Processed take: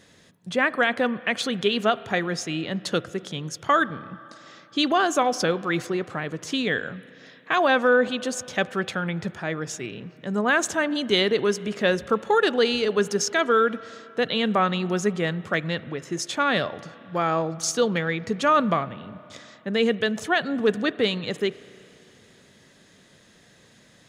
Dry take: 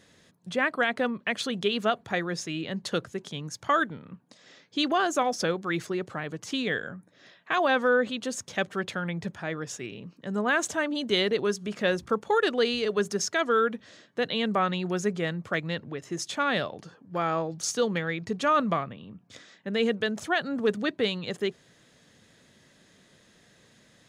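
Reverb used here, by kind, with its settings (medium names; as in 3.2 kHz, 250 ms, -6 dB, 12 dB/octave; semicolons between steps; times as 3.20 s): spring tank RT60 3.1 s, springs 32/37 ms, chirp 65 ms, DRR 17.5 dB; trim +4 dB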